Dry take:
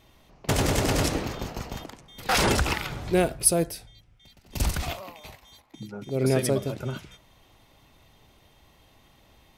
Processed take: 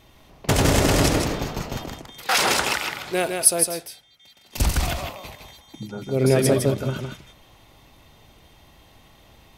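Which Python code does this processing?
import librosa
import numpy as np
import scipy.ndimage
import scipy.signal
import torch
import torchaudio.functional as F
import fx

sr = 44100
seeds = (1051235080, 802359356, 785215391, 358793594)

y = fx.highpass(x, sr, hz=790.0, slope=6, at=(2.07, 4.58))
y = y + 10.0 ** (-5.0 / 20.0) * np.pad(y, (int(158 * sr / 1000.0), 0))[:len(y)]
y = y * 10.0 ** (4.5 / 20.0)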